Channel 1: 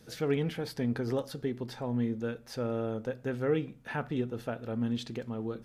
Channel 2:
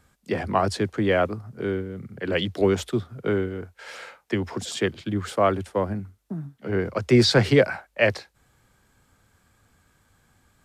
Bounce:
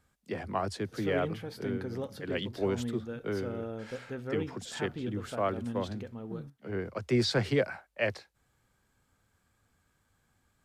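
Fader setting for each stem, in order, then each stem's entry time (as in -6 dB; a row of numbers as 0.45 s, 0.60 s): -5.5 dB, -10.0 dB; 0.85 s, 0.00 s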